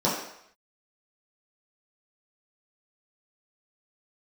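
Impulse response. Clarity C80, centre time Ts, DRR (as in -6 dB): 6.5 dB, 47 ms, -8.5 dB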